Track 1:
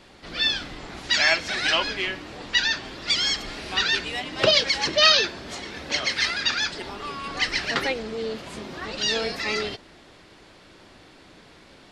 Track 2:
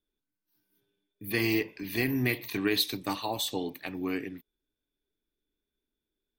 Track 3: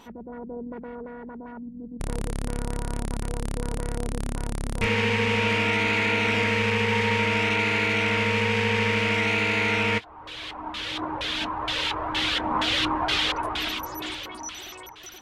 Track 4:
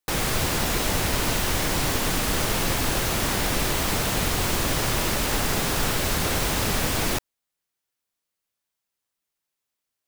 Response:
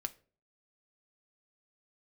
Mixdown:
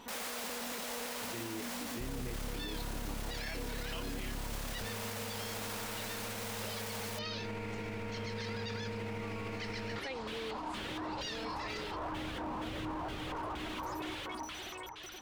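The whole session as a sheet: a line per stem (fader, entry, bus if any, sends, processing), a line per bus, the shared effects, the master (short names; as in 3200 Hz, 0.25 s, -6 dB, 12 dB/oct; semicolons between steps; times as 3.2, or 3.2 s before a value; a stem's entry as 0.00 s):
-14.0 dB, 2.20 s, no send, vocal rider within 5 dB 2 s
-12.0 dB, 0.00 s, no send, tilt shelf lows +6.5 dB
-2.5 dB, 0.00 s, no send, slew limiter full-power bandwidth 29 Hz
-3.0 dB, 0.00 s, no send, steep high-pass 450 Hz 48 dB/oct; auto duck -10 dB, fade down 1.95 s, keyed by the second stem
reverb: off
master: limiter -31 dBFS, peak gain reduction 17 dB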